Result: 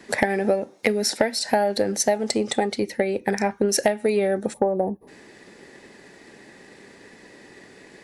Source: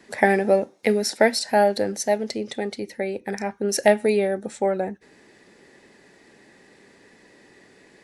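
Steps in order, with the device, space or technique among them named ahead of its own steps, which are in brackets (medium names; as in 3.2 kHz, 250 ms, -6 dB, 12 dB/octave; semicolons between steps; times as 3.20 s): 2.14–2.66 s: graphic EQ with 31 bands 800 Hz +8 dB, 1.25 kHz +6 dB, 8 kHz +9 dB; 4.53–5.08 s: time-frequency box 1.2–9.6 kHz -27 dB; drum-bus smash (transient shaper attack +5 dB, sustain +1 dB; compression 12:1, threshold -21 dBFS, peak gain reduction 14.5 dB; saturation -10 dBFS, distortion -23 dB); trim +5 dB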